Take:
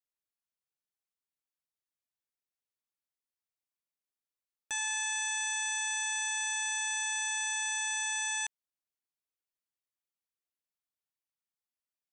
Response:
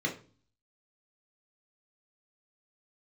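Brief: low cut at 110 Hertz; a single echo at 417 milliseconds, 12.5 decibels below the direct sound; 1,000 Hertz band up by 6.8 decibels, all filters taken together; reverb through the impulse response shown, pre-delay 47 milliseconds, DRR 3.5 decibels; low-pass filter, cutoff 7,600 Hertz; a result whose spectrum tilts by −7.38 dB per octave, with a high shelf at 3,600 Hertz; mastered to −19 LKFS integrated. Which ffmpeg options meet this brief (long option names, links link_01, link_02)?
-filter_complex "[0:a]highpass=110,lowpass=7600,equalizer=frequency=1000:width_type=o:gain=8.5,highshelf=frequency=3600:gain=-7.5,aecho=1:1:417:0.237,asplit=2[link_01][link_02];[1:a]atrim=start_sample=2205,adelay=47[link_03];[link_02][link_03]afir=irnorm=-1:irlink=0,volume=-10dB[link_04];[link_01][link_04]amix=inputs=2:normalize=0,volume=11.5dB"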